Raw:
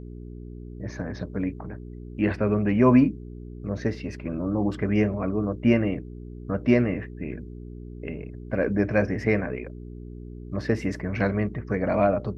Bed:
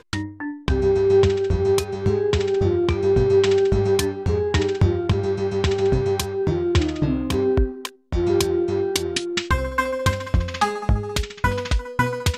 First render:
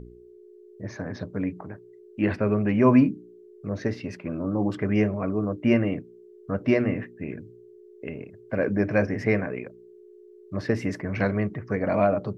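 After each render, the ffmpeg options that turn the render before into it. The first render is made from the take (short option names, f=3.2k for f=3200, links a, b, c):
-af "bandreject=f=60:t=h:w=4,bandreject=f=120:t=h:w=4,bandreject=f=180:t=h:w=4,bandreject=f=240:t=h:w=4,bandreject=f=300:t=h:w=4"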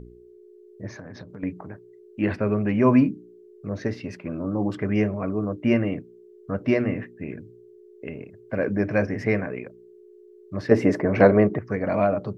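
-filter_complex "[0:a]asettb=1/sr,asplit=3[a][b][c];[a]atrim=end=0.974[d];[b]atrim=start=0.97:end=1.43,asetpts=PTS-STARTPTS,afade=t=in:d=0.004:c=qsin,afade=t=out:st=0.456:d=0.004:c=qsin,acompressor=threshold=-35dB:ratio=12:attack=3.2:release=140:knee=1:detection=peak[e];[c]atrim=start=1.426[f];[d][e]acrossfade=d=0.004:c1=hsin:c2=qsin[g];[g][f]acrossfade=d=0.004:c1=qsin:c2=hsin,asettb=1/sr,asplit=3[h][i][j];[h]atrim=end=10.714[k];[i]atrim=start=10.71:end=11.59,asetpts=PTS-STARTPTS,afade=t=in:d=0.004:c=qsin,afade=t=out:st=0.876:d=0.004:c=qsin,equalizer=f=520:t=o:w=2.7:g=13[l];[j]atrim=start=11.586[m];[k][l]acrossfade=d=0.004:c1=hsin:c2=qsin[n];[n][m]acrossfade=d=0.004:c1=qsin:c2=hsin"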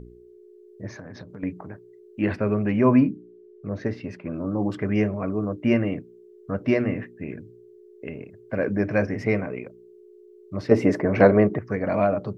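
-filter_complex "[0:a]asettb=1/sr,asplit=3[a][b][c];[a]atrim=end=2.814[d];[b]atrim=start=2.81:end=4.34,asetpts=PTS-STARTPTS,afade=t=in:d=0.004:c=qsin,afade=t=out:st=1.526:d=0.004:c=qsin,lowpass=f=2.9k:p=1[e];[c]atrim=start=4.336[f];[d][e]acrossfade=d=0.004:c1=hsin:c2=qsin[g];[g][f]acrossfade=d=0.004:c1=qsin:c2=hsin,asettb=1/sr,asplit=3[h][i][j];[h]atrim=end=9.154[k];[i]atrim=start=9.15:end=10.87,asetpts=PTS-STARTPTS,afade=t=in:d=0.004:c=qsin,afade=t=out:st=1.716:d=0.004:c=qsin,bandreject=f=1.7k:w=5.6[l];[j]atrim=start=10.866[m];[k][l]acrossfade=d=0.004:c1=hsin:c2=qsin[n];[n][m]acrossfade=d=0.004:c1=qsin:c2=hsin"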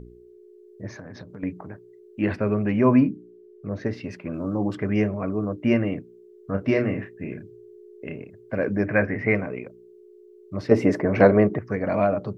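-filter_complex "[0:a]asettb=1/sr,asplit=3[a][b][c];[a]atrim=end=3.934[d];[b]atrim=start=3.93:end=4.58,asetpts=PTS-STARTPTS,afade=t=in:d=0.004:c=qsin,afade=t=out:st=0.646:d=0.004:c=qsin,highshelf=f=2.9k:g=6.5[e];[c]atrim=start=4.576[f];[d][e]acrossfade=d=0.004:c1=hsin:c2=qsin[g];[g][f]acrossfade=d=0.004:c1=qsin:c2=hsin,asettb=1/sr,asplit=3[h][i][j];[h]atrim=end=6.514[k];[i]atrim=start=6.51:end=8.16,asetpts=PTS-STARTPTS,afade=t=in:d=0.004:c=qsin,afade=t=out:st=1.646:d=0.004:c=qsin,asplit=2[l][m];[m]adelay=31,volume=-6.5dB[n];[l][n]amix=inputs=2:normalize=0,atrim=end_sample=72765[o];[j]atrim=start=8.156[p];[k][o]acrossfade=d=0.004:c1=hsin:c2=qsin[q];[q][p]acrossfade=d=0.004:c1=qsin:c2=hsin,asettb=1/sr,asplit=3[r][s][t];[r]atrim=end=8.864[u];[s]atrim=start=8.86:end=9.35,asetpts=PTS-STARTPTS,afade=t=in:d=0.004:c=qsin,afade=t=out:st=0.486:d=0.004:c=qsin,lowpass=f=2k:t=q:w=2.2[v];[t]atrim=start=9.346[w];[u][v]acrossfade=d=0.004:c1=hsin:c2=qsin[x];[x][w]acrossfade=d=0.004:c1=qsin:c2=hsin"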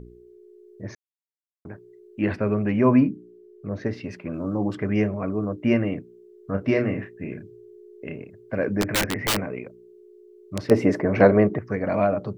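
-filter_complex "[0:a]asettb=1/sr,asplit=3[a][b][c];[a]atrim=end=8.814[d];[b]atrim=start=8.81:end=10.7,asetpts=PTS-STARTPTS,afade=t=in:d=0.004:c=qsin,afade=t=out:st=1.886:d=0.004:c=qsin,aeval=exprs='(mod(6.31*val(0)+1,2)-1)/6.31':c=same[e];[c]atrim=start=10.696[f];[d][e]acrossfade=d=0.004:c1=hsin:c2=qsin[g];[g][f]acrossfade=d=0.004:c1=qsin:c2=hsin,asplit=3[h][i][j];[h]atrim=end=0.95,asetpts=PTS-STARTPTS,afade=t=out:st=0.946:d=0.004:c=hsin[k];[i]atrim=start=0.95:end=1.65,asetpts=PTS-STARTPTS,volume=0[l];[j]atrim=start=1.65,asetpts=PTS-STARTPTS,afade=t=in:d=0.004:c=hsin[m];[k][l][m]concat=n=3:v=0:a=1"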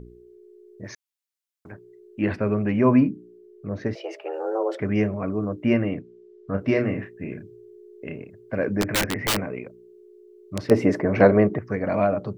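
-filter_complex "[0:a]asettb=1/sr,asplit=3[a][b][c];[a]atrim=end=0.844[d];[b]atrim=start=0.84:end=1.72,asetpts=PTS-STARTPTS,afade=t=in:d=0.004:c=qsin,afade=t=out:st=0.876:d=0.004:c=qsin,tiltshelf=f=940:g=-6.5[e];[c]atrim=start=1.716[f];[d][e]acrossfade=d=0.004:c1=hsin:c2=qsin[g];[g][f]acrossfade=d=0.004:c1=qsin:c2=hsin,asettb=1/sr,asplit=3[h][i][j];[h]atrim=end=3.954[k];[i]atrim=start=3.95:end=4.8,asetpts=PTS-STARTPTS,afade=t=in:d=0.004:c=qsin,afade=t=out:st=0.846:d=0.004:c=qsin,afreqshift=230[l];[j]atrim=start=4.796[m];[k][l]acrossfade=d=0.004:c1=hsin:c2=qsin[n];[n][m]acrossfade=d=0.004:c1=qsin:c2=hsin,asettb=1/sr,asplit=3[o][p][q];[o]atrim=end=5.664[r];[p]atrim=start=5.66:end=6.59,asetpts=PTS-STARTPTS,afade=t=in:d=0.004:c=qsin,afade=t=out:st=0.926:d=0.004:c=qsin,lowpass=5.6k[s];[q]atrim=start=6.586[t];[r][s]acrossfade=d=0.004:c1=hsin:c2=qsin[u];[u][t]acrossfade=d=0.004:c1=qsin:c2=hsin"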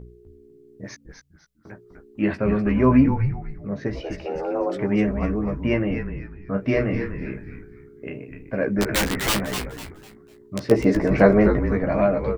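-filter_complex "[0:a]asplit=2[a][b];[b]adelay=15,volume=-6dB[c];[a][c]amix=inputs=2:normalize=0,asplit=2[d][e];[e]asplit=4[f][g][h][i];[f]adelay=250,afreqshift=-140,volume=-7dB[j];[g]adelay=500,afreqshift=-280,volume=-16.9dB[k];[h]adelay=750,afreqshift=-420,volume=-26.8dB[l];[i]adelay=1000,afreqshift=-560,volume=-36.7dB[m];[j][k][l][m]amix=inputs=4:normalize=0[n];[d][n]amix=inputs=2:normalize=0"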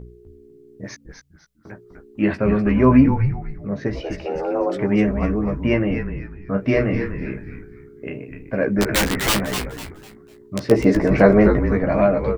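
-af "volume=3dB,alimiter=limit=-1dB:level=0:latency=1"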